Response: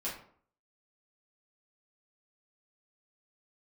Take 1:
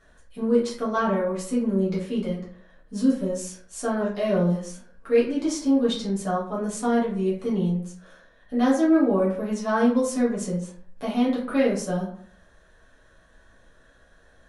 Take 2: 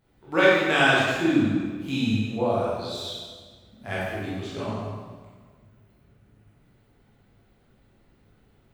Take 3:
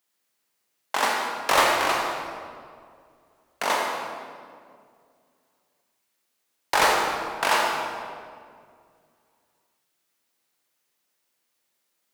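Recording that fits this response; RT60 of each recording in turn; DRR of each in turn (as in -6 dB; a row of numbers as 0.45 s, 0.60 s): 1; 0.55 s, 1.5 s, 2.1 s; -8.0 dB, -8.0 dB, -1.5 dB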